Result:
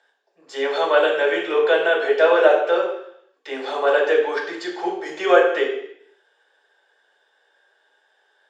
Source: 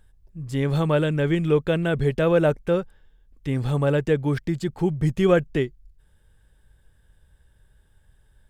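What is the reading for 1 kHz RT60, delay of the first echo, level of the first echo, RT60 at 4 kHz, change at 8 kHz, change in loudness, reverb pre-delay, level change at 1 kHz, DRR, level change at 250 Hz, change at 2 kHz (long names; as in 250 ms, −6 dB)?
0.70 s, no echo audible, no echo audible, 0.70 s, can't be measured, +3.5 dB, 3 ms, +10.0 dB, −3.5 dB, −7.0 dB, +10.0 dB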